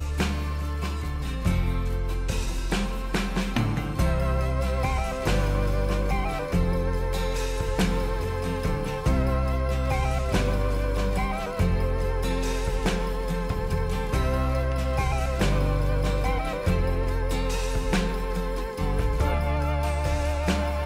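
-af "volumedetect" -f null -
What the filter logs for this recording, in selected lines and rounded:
mean_volume: -24.7 dB
max_volume: -10.5 dB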